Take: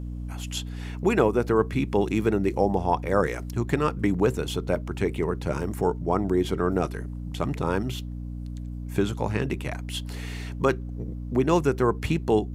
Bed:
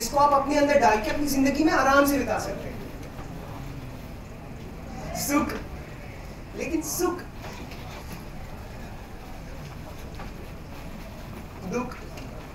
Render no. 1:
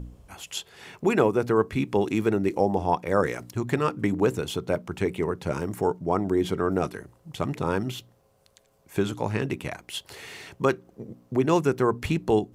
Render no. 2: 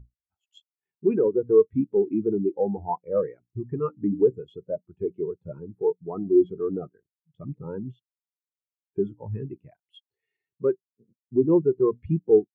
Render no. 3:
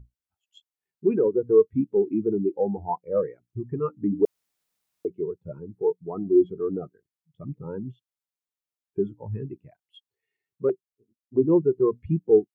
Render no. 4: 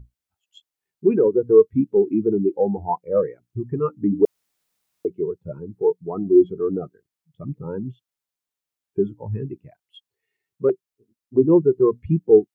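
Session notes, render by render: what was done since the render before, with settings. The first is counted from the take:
hum removal 60 Hz, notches 5
leveller curve on the samples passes 2; every bin expanded away from the loudest bin 2.5 to 1
0:04.25–0:05.05: fill with room tone; 0:10.69–0:11.39: flanger swept by the level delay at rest 4 ms, full sweep at −22.5 dBFS
level +4.5 dB

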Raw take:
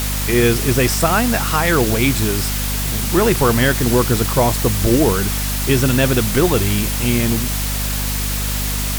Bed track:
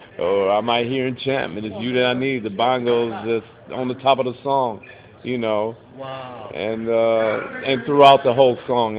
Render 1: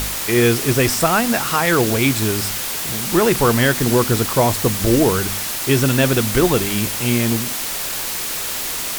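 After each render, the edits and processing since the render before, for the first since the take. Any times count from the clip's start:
hum removal 50 Hz, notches 5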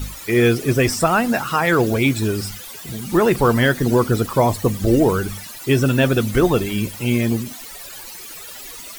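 broadband denoise 16 dB, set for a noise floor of −25 dBFS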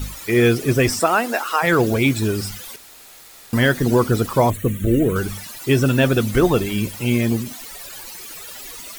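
0:00.99–0:01.62: high-pass filter 210 Hz → 450 Hz 24 dB per octave
0:02.76–0:03.53: fill with room tone
0:04.50–0:05.16: phaser with its sweep stopped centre 2,100 Hz, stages 4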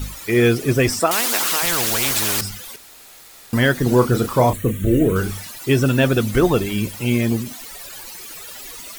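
0:01.11–0:02.41: every bin compressed towards the loudest bin 4 to 1
0:03.83–0:05.50: double-tracking delay 32 ms −8 dB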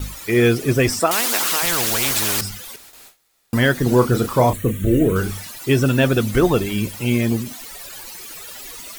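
noise gate with hold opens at −32 dBFS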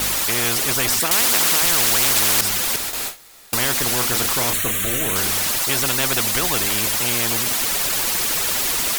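every bin compressed towards the loudest bin 4 to 1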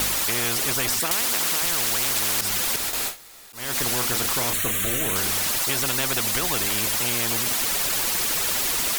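downward compressor, threshold −20 dBFS, peak gain reduction 7 dB
volume swells 255 ms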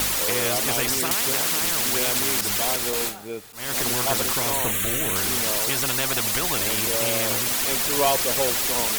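mix in bed track −12 dB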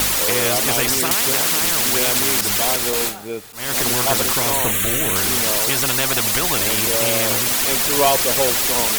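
level +5 dB
brickwall limiter −3 dBFS, peak gain reduction 1 dB

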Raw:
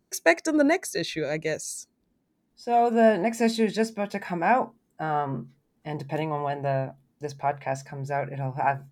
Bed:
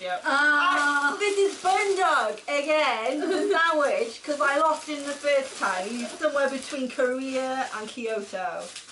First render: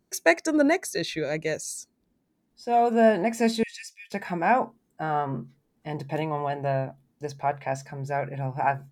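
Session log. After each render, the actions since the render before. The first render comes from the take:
0:03.63–0:04.12: Chebyshev high-pass with heavy ripple 1,800 Hz, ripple 6 dB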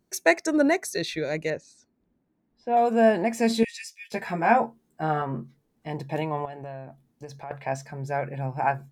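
0:01.50–0:02.77: low-pass filter 2,300 Hz
0:03.49–0:05.22: double-tracking delay 13 ms −3.5 dB
0:06.45–0:07.51: downward compressor 4 to 1, threshold −36 dBFS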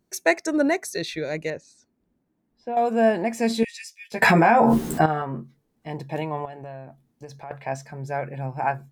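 0:01.49–0:02.77: downward compressor, threshold −24 dBFS
0:04.22–0:05.06: envelope flattener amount 100%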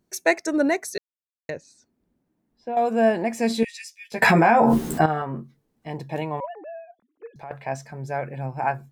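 0:00.98–0:01.49: silence
0:06.40–0:07.36: three sine waves on the formant tracks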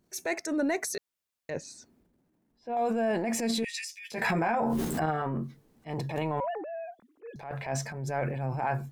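downward compressor 12 to 1, threshold −24 dBFS, peak gain reduction 12.5 dB
transient designer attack −8 dB, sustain +8 dB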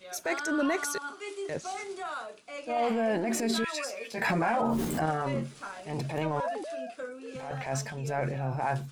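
mix in bed −15 dB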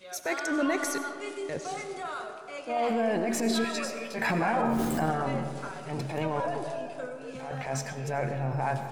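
comb and all-pass reverb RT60 2.5 s, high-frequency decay 0.35×, pre-delay 55 ms, DRR 7.5 dB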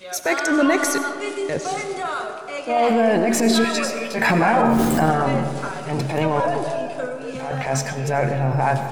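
level +10 dB

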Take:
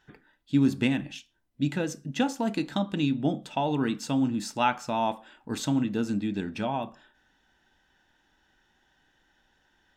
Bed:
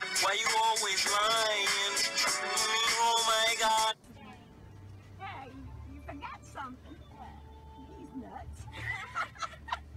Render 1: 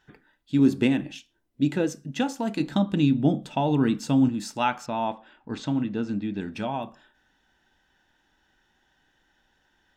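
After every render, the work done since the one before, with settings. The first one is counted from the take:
0:00.59–0:01.89: parametric band 380 Hz +7.5 dB 1.1 octaves
0:02.60–0:04.29: low-shelf EQ 410 Hz +7.5 dB
0:04.86–0:06.41: high-frequency loss of the air 140 metres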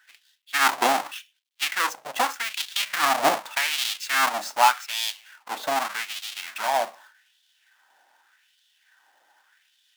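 each half-wave held at its own peak
auto-filter high-pass sine 0.84 Hz 680–3,400 Hz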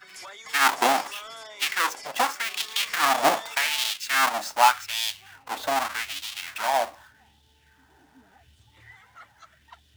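mix in bed −13.5 dB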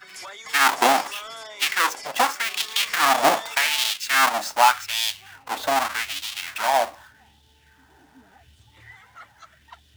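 level +3.5 dB
brickwall limiter −3 dBFS, peak gain reduction 2.5 dB

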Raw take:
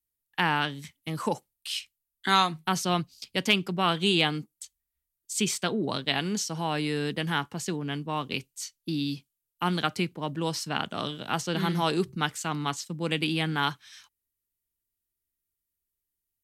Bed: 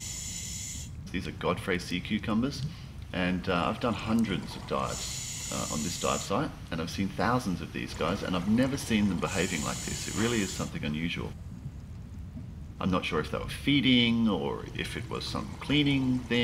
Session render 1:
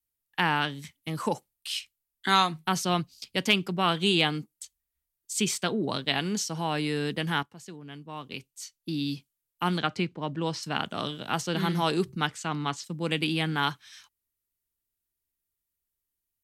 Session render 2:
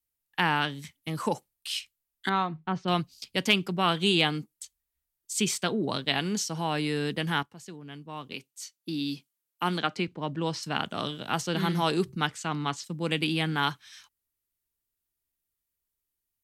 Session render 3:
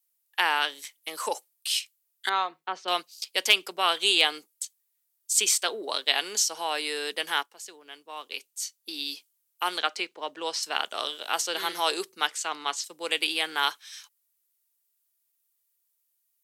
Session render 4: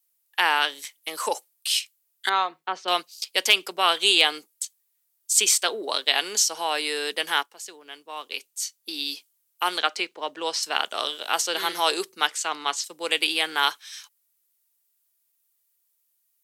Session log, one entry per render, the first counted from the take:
0:07.43–0:09.10: fade in quadratic, from −13 dB; 0:09.78–0:10.63: high-frequency loss of the air 80 metres; 0:12.27–0:12.84: high-frequency loss of the air 52 metres
0:02.29–0:02.88: head-to-tape spacing loss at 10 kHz 41 dB; 0:08.33–0:10.08: high-pass filter 180 Hz
high-pass filter 430 Hz 24 dB per octave; high-shelf EQ 3,700 Hz +10.5 dB
level +3.5 dB; brickwall limiter −3 dBFS, peak gain reduction 2.5 dB

